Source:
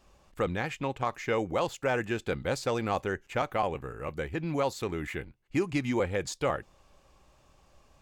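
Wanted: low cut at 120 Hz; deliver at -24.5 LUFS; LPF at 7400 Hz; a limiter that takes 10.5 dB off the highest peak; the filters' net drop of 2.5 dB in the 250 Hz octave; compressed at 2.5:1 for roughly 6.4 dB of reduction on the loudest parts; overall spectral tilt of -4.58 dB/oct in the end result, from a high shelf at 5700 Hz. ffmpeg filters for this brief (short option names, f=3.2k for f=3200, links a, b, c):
-af "highpass=120,lowpass=7.4k,equalizer=f=250:t=o:g=-3,highshelf=f=5.7k:g=-7.5,acompressor=threshold=-34dB:ratio=2.5,volume=17dB,alimiter=limit=-12.5dB:level=0:latency=1"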